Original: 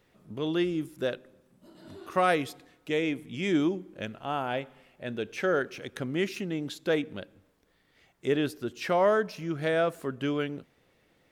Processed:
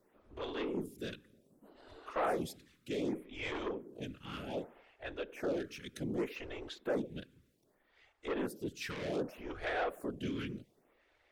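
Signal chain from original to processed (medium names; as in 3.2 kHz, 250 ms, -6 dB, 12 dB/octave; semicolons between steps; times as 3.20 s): whisper effect; saturation -26 dBFS, distortion -9 dB; lamp-driven phase shifter 0.65 Hz; trim -2 dB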